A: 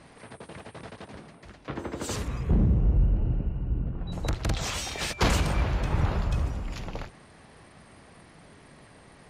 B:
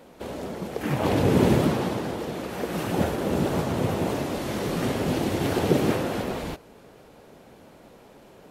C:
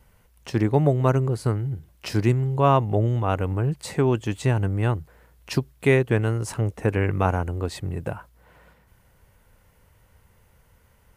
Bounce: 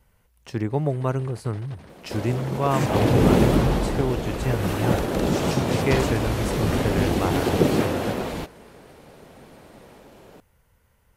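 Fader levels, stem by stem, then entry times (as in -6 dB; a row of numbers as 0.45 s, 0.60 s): -3.5 dB, +2.0 dB, -4.5 dB; 0.70 s, 1.90 s, 0.00 s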